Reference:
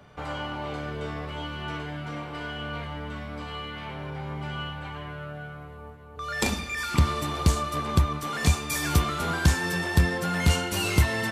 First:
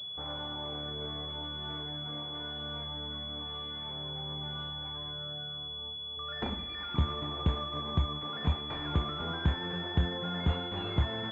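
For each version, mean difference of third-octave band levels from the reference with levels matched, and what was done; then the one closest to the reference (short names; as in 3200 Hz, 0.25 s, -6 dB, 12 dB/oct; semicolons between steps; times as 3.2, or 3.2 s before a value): 7.0 dB: pulse-width modulation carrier 3400 Hz; gain -7.5 dB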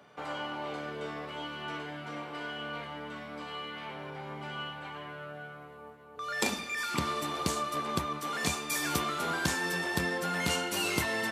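2.5 dB: HPF 230 Hz 12 dB/oct; gain -3 dB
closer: second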